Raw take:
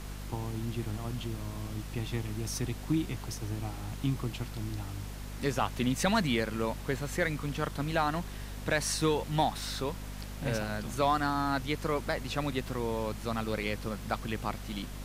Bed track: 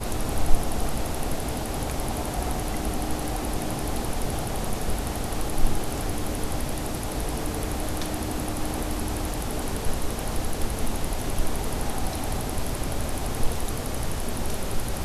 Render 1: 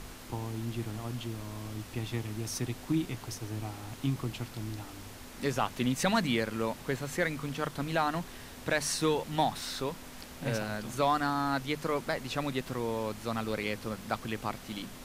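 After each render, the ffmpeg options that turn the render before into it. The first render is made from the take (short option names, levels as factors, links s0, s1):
-af "bandreject=f=50:t=h:w=6,bandreject=f=100:t=h:w=6,bandreject=f=150:t=h:w=6,bandreject=f=200:t=h:w=6"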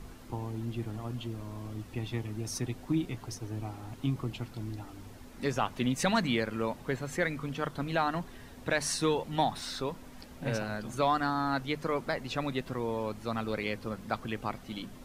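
-af "afftdn=nr=9:nf=-47"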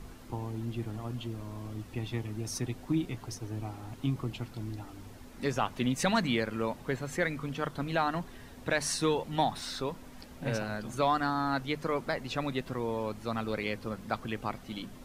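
-af anull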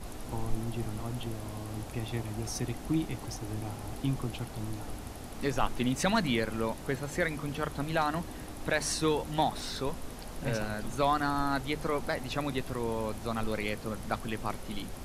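-filter_complex "[1:a]volume=0.188[s0];[0:a][s0]amix=inputs=2:normalize=0"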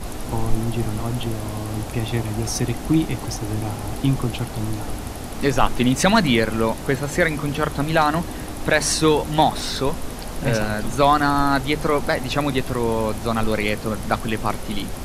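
-af "volume=3.76"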